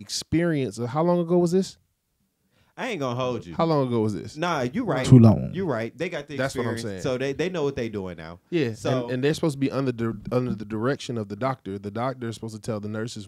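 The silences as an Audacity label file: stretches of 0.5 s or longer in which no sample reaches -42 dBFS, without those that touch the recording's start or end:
1.730000	2.770000	silence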